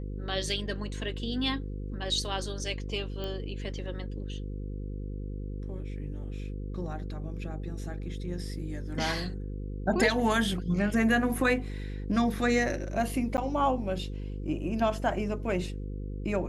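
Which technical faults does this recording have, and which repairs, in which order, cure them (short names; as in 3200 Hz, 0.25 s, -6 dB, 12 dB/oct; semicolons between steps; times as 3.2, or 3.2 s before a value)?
buzz 50 Hz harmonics 10 -36 dBFS
3.24 pop -23 dBFS
13.37–13.38 gap 9.8 ms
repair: de-click; de-hum 50 Hz, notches 10; interpolate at 13.37, 9.8 ms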